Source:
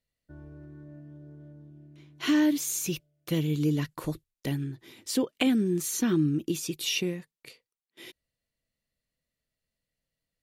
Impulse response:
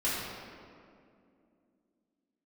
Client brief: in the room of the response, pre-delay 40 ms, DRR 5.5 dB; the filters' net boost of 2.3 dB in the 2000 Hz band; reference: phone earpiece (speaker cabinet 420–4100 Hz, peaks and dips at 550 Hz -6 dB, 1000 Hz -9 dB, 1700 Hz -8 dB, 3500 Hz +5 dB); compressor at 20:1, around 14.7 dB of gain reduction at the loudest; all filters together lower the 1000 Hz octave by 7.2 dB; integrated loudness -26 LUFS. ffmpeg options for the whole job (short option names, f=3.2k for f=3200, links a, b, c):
-filter_complex "[0:a]equalizer=f=1k:t=o:g=-5.5,equalizer=f=2k:t=o:g=7,acompressor=threshold=-34dB:ratio=20,asplit=2[a][b];[1:a]atrim=start_sample=2205,adelay=40[c];[b][c]afir=irnorm=-1:irlink=0,volume=-14.5dB[d];[a][d]amix=inputs=2:normalize=0,highpass=420,equalizer=f=550:t=q:w=4:g=-6,equalizer=f=1k:t=q:w=4:g=-9,equalizer=f=1.7k:t=q:w=4:g=-8,equalizer=f=3.5k:t=q:w=4:g=5,lowpass=f=4.1k:w=0.5412,lowpass=f=4.1k:w=1.3066,volume=17dB"